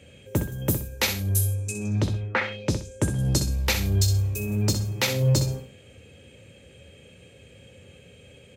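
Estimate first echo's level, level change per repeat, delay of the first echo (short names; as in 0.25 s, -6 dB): -8.5 dB, -11.0 dB, 63 ms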